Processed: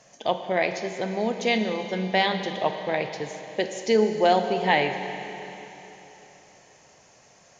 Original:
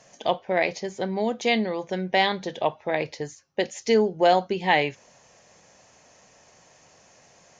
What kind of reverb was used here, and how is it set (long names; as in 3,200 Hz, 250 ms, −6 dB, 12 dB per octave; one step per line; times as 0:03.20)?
four-comb reverb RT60 3.6 s, combs from 33 ms, DRR 6.5 dB
level −1 dB